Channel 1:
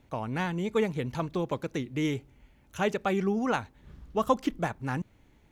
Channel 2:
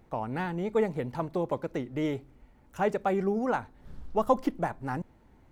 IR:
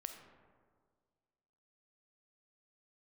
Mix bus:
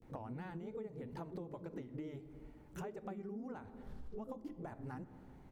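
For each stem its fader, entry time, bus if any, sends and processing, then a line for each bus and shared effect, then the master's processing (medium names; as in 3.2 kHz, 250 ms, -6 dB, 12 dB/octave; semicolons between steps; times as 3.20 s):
-10.0 dB, 0.00 s, send -3.5 dB, phase randomisation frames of 100 ms; steep low-pass 500 Hz 72 dB/octave
-4.5 dB, 21 ms, send -5.5 dB, compression, threshold -34 dBFS, peak gain reduction 15.5 dB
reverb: on, RT60 1.8 s, pre-delay 5 ms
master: compression 6:1, threshold -43 dBFS, peak gain reduction 15 dB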